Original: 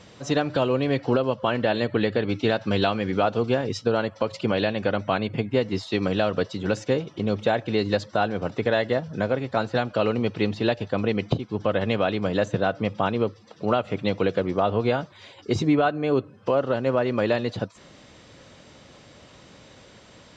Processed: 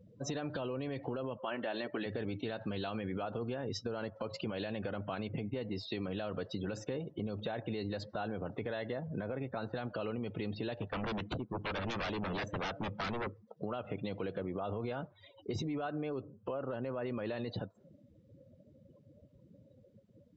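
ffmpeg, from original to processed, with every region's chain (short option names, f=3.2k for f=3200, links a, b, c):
-filter_complex "[0:a]asettb=1/sr,asplit=3[a][b][c];[a]atrim=end=1.374[d];[b]atrim=start=1.37:end=2.06,asetpts=PTS-STARTPTS,afade=t=in:d=0.004:c=qsin,afade=t=out:st=0.686:d=0.004:c=qsin,highpass=310,lowpass=4.4k,bandreject=f=470:w=6.3[e];[c]atrim=start=2.056[f];[d][e]acrossfade=d=0.004:c1=hsin:c2=qsin[g];[g][f]acrossfade=d=0.004:c1=qsin:c2=hsin,asettb=1/sr,asplit=3[h][i][j];[h]atrim=end=10.824[k];[i]atrim=start=10.82:end=13.27,asetpts=PTS-STARTPTS,afade=t=in:d=0.004:c=qsin,afade=t=out:st=2.446:d=0.004:c=qsin,equalizer=f=4.4k:t=o:w=0.78:g=-3.5,aeval=exprs='0.0596*(abs(mod(val(0)/0.0596+3,4)-2)-1)':c=same[l];[j]atrim=start=13.266[m];[k][l]acrossfade=d=0.004:c1=hsin:c2=qsin[n];[n][m]acrossfade=d=0.004:c1=qsin:c2=hsin,afftdn=nr=34:nf=-40,alimiter=limit=-21dB:level=0:latency=1:release=32,acompressor=threshold=-31dB:ratio=4,volume=-3.5dB"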